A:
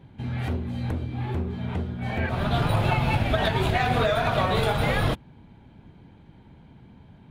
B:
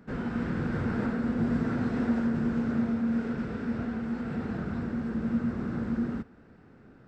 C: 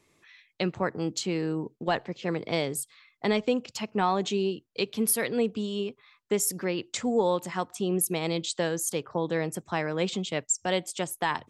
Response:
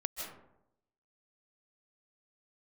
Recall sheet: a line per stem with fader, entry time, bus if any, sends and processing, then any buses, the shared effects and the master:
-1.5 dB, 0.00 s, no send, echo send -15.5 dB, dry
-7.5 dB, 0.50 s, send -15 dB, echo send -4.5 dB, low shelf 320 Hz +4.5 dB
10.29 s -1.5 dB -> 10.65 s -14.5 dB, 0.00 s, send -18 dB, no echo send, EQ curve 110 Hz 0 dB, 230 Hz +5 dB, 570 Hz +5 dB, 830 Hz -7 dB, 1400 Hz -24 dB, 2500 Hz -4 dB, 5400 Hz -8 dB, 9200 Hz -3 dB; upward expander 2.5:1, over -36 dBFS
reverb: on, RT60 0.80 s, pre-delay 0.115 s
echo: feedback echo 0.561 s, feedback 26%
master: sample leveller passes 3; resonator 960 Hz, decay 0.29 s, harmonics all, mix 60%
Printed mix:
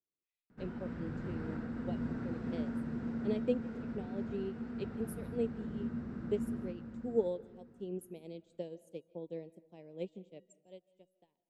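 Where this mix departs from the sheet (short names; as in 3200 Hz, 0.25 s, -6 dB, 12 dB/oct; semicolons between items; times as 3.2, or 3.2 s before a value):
stem A: muted; master: missing sample leveller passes 3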